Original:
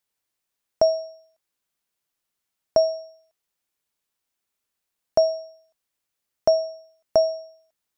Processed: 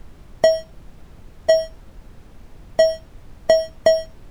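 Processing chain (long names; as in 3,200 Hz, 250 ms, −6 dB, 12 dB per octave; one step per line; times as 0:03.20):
leveller curve on the samples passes 2
in parallel at +2.5 dB: downward compressor, threshold −22 dBFS, peak gain reduction 10 dB
on the sum: phase-vocoder stretch with locked phases 0.54×
tuned comb filter 230 Hz, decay 0.18 s, harmonics all, mix 70%
background noise brown −47 dBFS
level +7 dB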